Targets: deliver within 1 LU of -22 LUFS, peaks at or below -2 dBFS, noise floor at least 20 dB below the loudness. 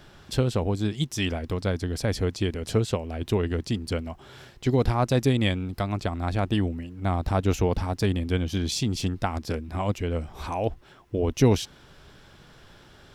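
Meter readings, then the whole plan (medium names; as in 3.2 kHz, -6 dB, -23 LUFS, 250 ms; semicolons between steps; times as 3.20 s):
loudness -27.0 LUFS; peak level -7.5 dBFS; loudness target -22.0 LUFS
-> trim +5 dB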